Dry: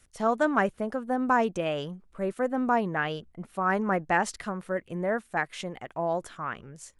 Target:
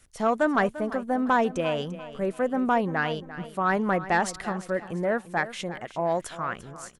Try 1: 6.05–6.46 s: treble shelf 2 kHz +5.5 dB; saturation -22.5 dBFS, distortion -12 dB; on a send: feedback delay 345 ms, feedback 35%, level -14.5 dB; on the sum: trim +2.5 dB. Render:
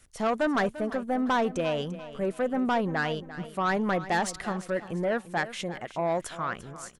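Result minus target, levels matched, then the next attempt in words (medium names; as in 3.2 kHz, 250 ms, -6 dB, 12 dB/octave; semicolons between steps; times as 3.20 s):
saturation: distortion +10 dB
6.05–6.46 s: treble shelf 2 kHz +5.5 dB; saturation -14.5 dBFS, distortion -21 dB; on a send: feedback delay 345 ms, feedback 35%, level -14.5 dB; on the sum: trim +2.5 dB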